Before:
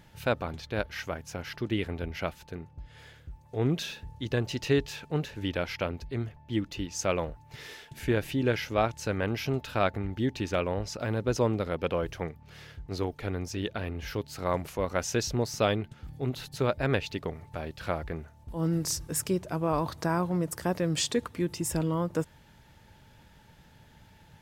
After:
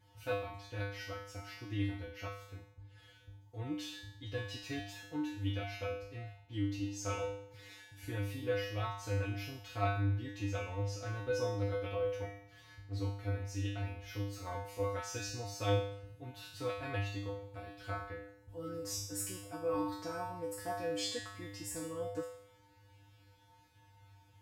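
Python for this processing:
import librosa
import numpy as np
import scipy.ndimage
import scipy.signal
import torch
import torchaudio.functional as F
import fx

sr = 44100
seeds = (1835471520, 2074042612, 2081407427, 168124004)

y = fx.comb_fb(x, sr, f0_hz=100.0, decay_s=0.67, harmonics='odd', damping=0.0, mix_pct=100)
y = y * 10.0 ** (7.5 / 20.0)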